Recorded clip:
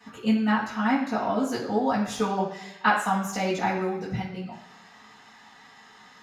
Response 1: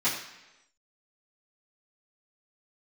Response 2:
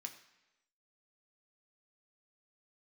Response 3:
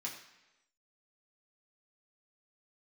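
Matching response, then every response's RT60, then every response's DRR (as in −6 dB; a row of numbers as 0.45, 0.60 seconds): 1; 1.0, 1.0, 1.0 seconds; −13.0, 3.5, −4.0 decibels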